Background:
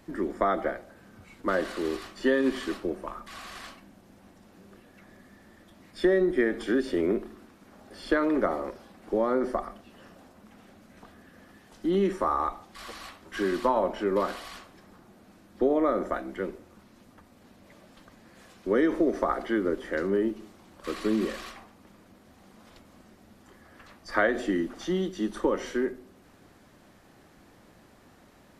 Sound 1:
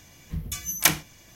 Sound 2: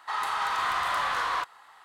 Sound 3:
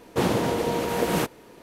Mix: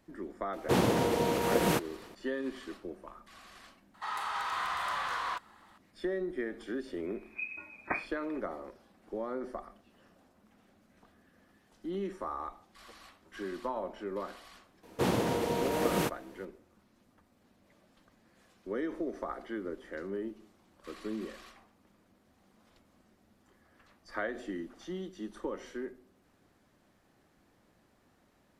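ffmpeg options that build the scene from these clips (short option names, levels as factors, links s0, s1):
-filter_complex "[3:a]asplit=2[s0][s1];[0:a]volume=0.266[s2];[1:a]lowpass=f=2200:t=q:w=0.5098,lowpass=f=2200:t=q:w=0.6013,lowpass=f=2200:t=q:w=0.9,lowpass=f=2200:t=q:w=2.563,afreqshift=-2600[s3];[s0]atrim=end=1.62,asetpts=PTS-STARTPTS,volume=0.668,afade=t=in:d=0.004:c=hsin,afade=t=out:st=1.616:d=0.004:c=hsin,adelay=530[s4];[2:a]atrim=end=1.84,asetpts=PTS-STARTPTS,volume=0.473,afade=t=in:d=0.004:c=hsin,afade=t=out:st=1.836:d=0.004:c=hsin,adelay=3940[s5];[s3]atrim=end=1.35,asetpts=PTS-STARTPTS,volume=0.422,afade=t=in:d=0.004:c=hsin,afade=t=out:st=1.346:d=0.004:c=hsin,adelay=7050[s6];[s1]atrim=end=1.62,asetpts=PTS-STARTPTS,volume=0.501,afade=t=in:d=0.004:c=hsin,afade=t=out:st=1.616:d=0.004:c=hsin,adelay=14830[s7];[s2][s4][s5][s6][s7]amix=inputs=5:normalize=0"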